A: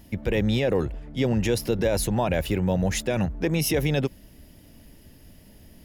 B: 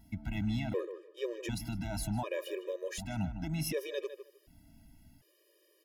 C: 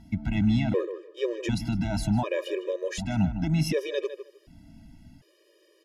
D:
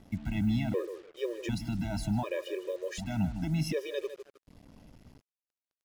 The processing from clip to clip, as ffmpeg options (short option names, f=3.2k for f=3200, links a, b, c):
-filter_complex "[0:a]asplit=2[a][b];[b]adelay=155,lowpass=f=2.4k:p=1,volume=-10dB,asplit=2[c][d];[d]adelay=155,lowpass=f=2.4k:p=1,volume=0.18,asplit=2[e][f];[f]adelay=155,lowpass=f=2.4k:p=1,volume=0.18[g];[a][c][e][g]amix=inputs=4:normalize=0,afftfilt=real='re*gt(sin(2*PI*0.67*pts/sr)*(1-2*mod(floor(b*sr/1024/320),2)),0)':imag='im*gt(sin(2*PI*0.67*pts/sr)*(1-2*mod(floor(b*sr/1024/320),2)),0)':win_size=1024:overlap=0.75,volume=-9dB"
-af "lowpass=7.2k,equalizer=f=190:w=0.93:g=4.5,volume=7dB"
-af "acrusher=bits=7:mix=0:aa=0.5,volume=-5.5dB"